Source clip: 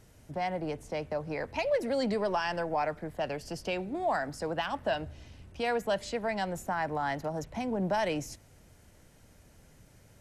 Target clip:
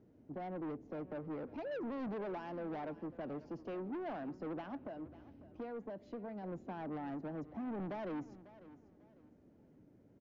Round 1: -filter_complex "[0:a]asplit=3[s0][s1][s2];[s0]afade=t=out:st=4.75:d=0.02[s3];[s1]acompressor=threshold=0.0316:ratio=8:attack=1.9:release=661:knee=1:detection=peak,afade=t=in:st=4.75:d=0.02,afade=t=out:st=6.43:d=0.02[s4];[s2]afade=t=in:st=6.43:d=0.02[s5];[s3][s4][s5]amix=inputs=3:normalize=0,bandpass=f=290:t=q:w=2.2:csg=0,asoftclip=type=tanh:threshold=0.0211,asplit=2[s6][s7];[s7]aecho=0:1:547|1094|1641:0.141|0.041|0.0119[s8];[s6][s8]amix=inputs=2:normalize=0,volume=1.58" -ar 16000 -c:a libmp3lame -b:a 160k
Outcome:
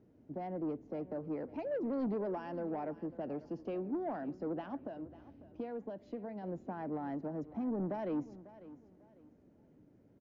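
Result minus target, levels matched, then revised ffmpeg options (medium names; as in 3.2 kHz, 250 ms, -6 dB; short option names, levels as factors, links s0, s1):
saturation: distortion -8 dB
-filter_complex "[0:a]asplit=3[s0][s1][s2];[s0]afade=t=out:st=4.75:d=0.02[s3];[s1]acompressor=threshold=0.0316:ratio=8:attack=1.9:release=661:knee=1:detection=peak,afade=t=in:st=4.75:d=0.02,afade=t=out:st=6.43:d=0.02[s4];[s2]afade=t=in:st=6.43:d=0.02[s5];[s3][s4][s5]amix=inputs=3:normalize=0,bandpass=f=290:t=q:w=2.2:csg=0,asoftclip=type=tanh:threshold=0.00794,asplit=2[s6][s7];[s7]aecho=0:1:547|1094|1641:0.141|0.041|0.0119[s8];[s6][s8]amix=inputs=2:normalize=0,volume=1.58" -ar 16000 -c:a libmp3lame -b:a 160k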